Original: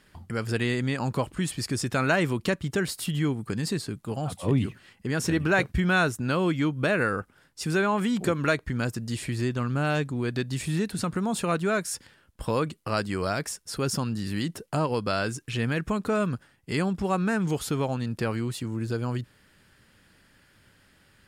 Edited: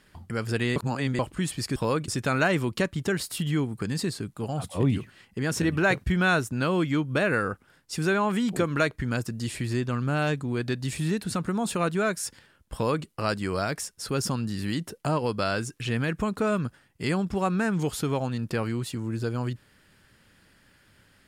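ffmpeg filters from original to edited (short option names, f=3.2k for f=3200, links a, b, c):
-filter_complex "[0:a]asplit=5[a][b][c][d][e];[a]atrim=end=0.762[f];[b]atrim=start=0.758:end=1.192,asetpts=PTS-STARTPTS,areverse[g];[c]atrim=start=1.188:end=1.762[h];[d]atrim=start=12.418:end=12.742[i];[e]atrim=start=1.758[j];[f][g]acrossfade=d=0.004:c1=hsin:c2=hsin[k];[k][h]acrossfade=d=0.004:c1=hsin:c2=hsin[l];[l][i]acrossfade=d=0.004:c1=hsin:c2=hsin[m];[m][j]acrossfade=d=0.004:c1=hsin:c2=hsin"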